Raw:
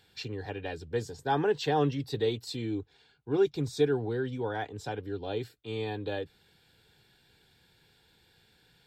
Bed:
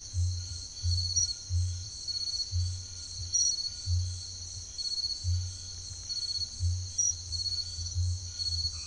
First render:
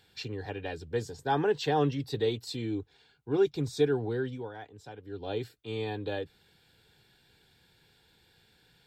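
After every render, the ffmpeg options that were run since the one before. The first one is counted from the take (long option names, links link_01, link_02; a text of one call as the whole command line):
ffmpeg -i in.wav -filter_complex "[0:a]asplit=3[link_01][link_02][link_03];[link_01]atrim=end=4.51,asetpts=PTS-STARTPTS,afade=type=out:start_time=4.23:duration=0.28:silence=0.316228[link_04];[link_02]atrim=start=4.51:end=5.02,asetpts=PTS-STARTPTS,volume=-10dB[link_05];[link_03]atrim=start=5.02,asetpts=PTS-STARTPTS,afade=type=in:duration=0.28:silence=0.316228[link_06];[link_04][link_05][link_06]concat=n=3:v=0:a=1" out.wav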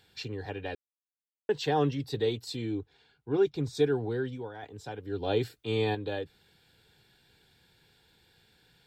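ffmpeg -i in.wav -filter_complex "[0:a]asettb=1/sr,asplit=3[link_01][link_02][link_03];[link_01]atrim=end=2.724[link_04];[link_02]atrim=start=2.72:end=3.75,asetpts=PTS-STARTPTS,afade=type=in:duration=0.004:curve=qsin,afade=type=out:start_time=1.026:duration=0.004:curve=qsin,highshelf=frequency=6000:gain=-7.5[link_05];[link_03]atrim=start=3.746[link_06];[link_04][link_05]acrossfade=duration=0.004:curve1=hsin:curve2=qsin[link_07];[link_07][link_06]acrossfade=duration=0.004:curve1=qsin:curve2=hsin,asettb=1/sr,asplit=3[link_08][link_09][link_10];[link_08]atrim=end=4.634[link_11];[link_09]atrim=start=4.63:end=5.95,asetpts=PTS-STARTPTS,afade=type=in:duration=0.004:curve=qsin,afade=type=out:start_time=1.316:duration=0.004:curve=qsin,acontrast=50[link_12];[link_10]atrim=start=5.946[link_13];[link_11][link_12]acrossfade=duration=0.004:curve1=hsin:curve2=qsin[link_14];[link_14][link_13]acrossfade=duration=0.004:curve1=qsin:curve2=hsin,asplit=3[link_15][link_16][link_17];[link_15]atrim=end=0.75,asetpts=PTS-STARTPTS,afade=type=out:start_time=0.746:duration=0.004:curve=hsin[link_18];[link_16]atrim=start=0.75:end=1.49,asetpts=PTS-STARTPTS,volume=0[link_19];[link_17]atrim=start=1.49,asetpts=PTS-STARTPTS,afade=type=in:duration=0.004:curve=hsin[link_20];[link_18][link_19][link_20]concat=n=3:v=0:a=1" out.wav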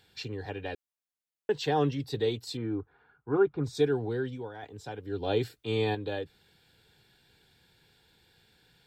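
ffmpeg -i in.wav -filter_complex "[0:a]asettb=1/sr,asplit=3[link_01][link_02][link_03];[link_01]atrim=end=2.574[link_04];[link_02]atrim=start=2.57:end=3.64,asetpts=PTS-STARTPTS,afade=type=in:duration=0.004:curve=qsin,afade=type=out:start_time=1.066:duration=0.004:curve=qsin,lowpass=frequency=1300:width_type=q:width=3.7[link_05];[link_03]atrim=start=3.636[link_06];[link_04][link_05]acrossfade=duration=0.004:curve1=hsin:curve2=qsin[link_07];[link_07][link_06]acrossfade=duration=0.004:curve1=qsin:curve2=hsin" out.wav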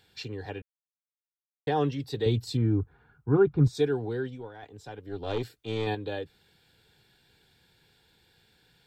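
ffmpeg -i in.wav -filter_complex "[0:a]asettb=1/sr,asplit=3[link_01][link_02][link_03];[link_01]atrim=end=2.264[link_04];[link_02]atrim=start=2.26:end=3.68,asetpts=PTS-STARTPTS,afade=type=in:duration=0.004:curve=qsin,afade=type=out:start_time=1.416:duration=0.004:curve=qsin,bass=frequency=250:gain=14,treble=frequency=4000:gain=1[link_05];[link_03]atrim=start=3.676[link_06];[link_04][link_05]acrossfade=duration=0.004:curve1=hsin:curve2=qsin[link_07];[link_07][link_06]acrossfade=duration=0.004:curve1=qsin:curve2=hsin,asettb=1/sr,asplit=3[link_08][link_09][link_10];[link_08]atrim=end=4.274[link_11];[link_09]atrim=start=4.27:end=5.87,asetpts=PTS-STARTPTS,afade=type=in:duration=0.004:curve=qsin,afade=type=out:start_time=1.596:duration=0.004:curve=qsin,aeval=exprs='(tanh(14.1*val(0)+0.55)-tanh(0.55))/14.1':channel_layout=same[link_12];[link_10]atrim=start=5.866[link_13];[link_11][link_12]acrossfade=duration=0.004:curve1=hsin:curve2=qsin[link_14];[link_14][link_13]acrossfade=duration=0.004:curve1=qsin:curve2=hsin,asplit=3[link_15][link_16][link_17];[link_15]atrim=end=0.62,asetpts=PTS-STARTPTS,afade=type=out:start_time=0.616:duration=0.004:curve=hsin[link_18];[link_16]atrim=start=0.62:end=1.67,asetpts=PTS-STARTPTS,volume=0[link_19];[link_17]atrim=start=1.67,asetpts=PTS-STARTPTS,afade=type=in:duration=0.004:curve=hsin[link_20];[link_18][link_19][link_20]concat=n=3:v=0:a=1" out.wav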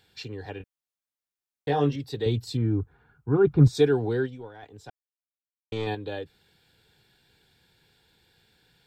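ffmpeg -i in.wav -filter_complex "[0:a]asettb=1/sr,asplit=3[link_01][link_02][link_03];[link_01]atrim=end=0.584[link_04];[link_02]atrim=start=0.58:end=1.96,asetpts=PTS-STARTPTS,afade=type=in:duration=0.004:curve=qsin,afade=type=out:start_time=1.376:duration=0.004:curve=qsin,asplit=2[link_05][link_06];[link_06]adelay=21,volume=-3dB[link_07];[link_05][link_07]amix=inputs=2:normalize=0,atrim=end_sample=60858[link_08];[link_03]atrim=start=1.956[link_09];[link_04][link_08]acrossfade=duration=0.004:curve1=hsin:curve2=qsin[link_10];[link_10][link_09]acrossfade=duration=0.004:curve1=qsin:curve2=hsin,asplit=3[link_11][link_12][link_13];[link_11]afade=type=out:start_time=3.43:duration=0.02[link_14];[link_12]acontrast=36,afade=type=in:start_time=3.43:duration=0.02,afade=type=out:start_time=4.25:duration=0.02[link_15];[link_13]afade=type=in:start_time=4.25:duration=0.02[link_16];[link_14][link_15][link_16]amix=inputs=3:normalize=0,asplit=3[link_17][link_18][link_19];[link_17]atrim=end=4.9,asetpts=PTS-STARTPTS,afade=type=out:start_time=4.896:duration=0.004:curve=hsin[link_20];[link_18]atrim=start=4.9:end=5.72,asetpts=PTS-STARTPTS,volume=0[link_21];[link_19]atrim=start=5.72,asetpts=PTS-STARTPTS,afade=type=in:duration=0.004:curve=hsin[link_22];[link_20][link_21][link_22]concat=n=3:v=0:a=1" out.wav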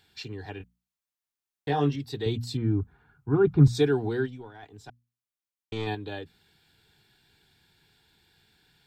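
ffmpeg -i in.wav -af "equalizer=frequency=520:width_type=o:width=0.27:gain=-12,bandreject=frequency=60:width_type=h:width=6,bandreject=frequency=120:width_type=h:width=6,bandreject=frequency=180:width_type=h:width=6,bandreject=frequency=240:width_type=h:width=6" out.wav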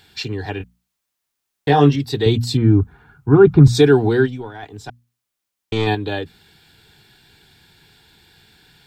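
ffmpeg -i in.wav -af "alimiter=level_in=12.5dB:limit=-1dB:release=50:level=0:latency=1" out.wav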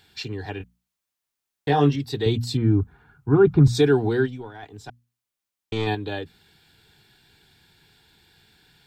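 ffmpeg -i in.wav -af "volume=-6dB" out.wav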